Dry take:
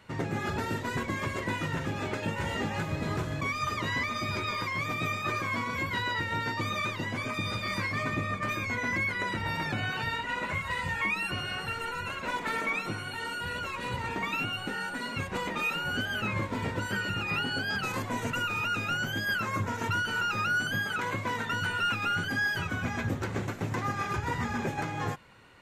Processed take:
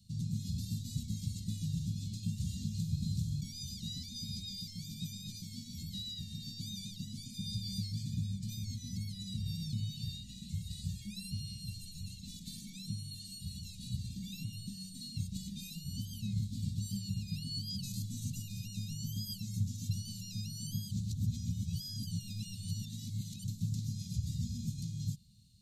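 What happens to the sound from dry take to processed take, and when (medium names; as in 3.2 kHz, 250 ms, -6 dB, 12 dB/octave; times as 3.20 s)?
3.41–7.54 s: peaking EQ 110 Hz -10.5 dB 0.49 oct
20.91–23.44 s: reverse
whole clip: Chebyshev band-stop 200–4000 Hz, order 4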